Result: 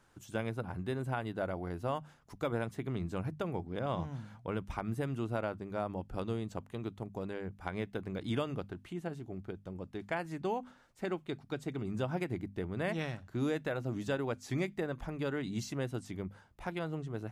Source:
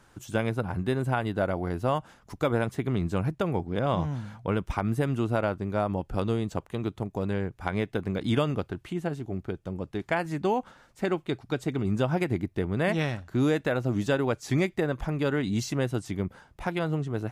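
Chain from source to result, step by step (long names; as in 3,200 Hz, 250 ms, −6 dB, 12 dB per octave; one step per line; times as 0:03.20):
mains-hum notches 50/100/150/200/250 Hz
level −8.5 dB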